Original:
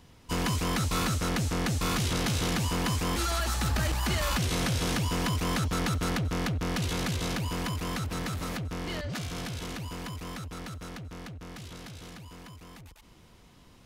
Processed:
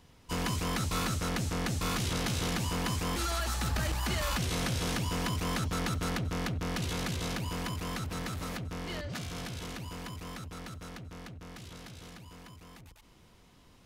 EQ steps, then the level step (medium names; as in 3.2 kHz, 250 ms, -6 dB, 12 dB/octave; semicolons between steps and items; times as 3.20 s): hum notches 50/100/150/200/250/300/350 Hz; -3.0 dB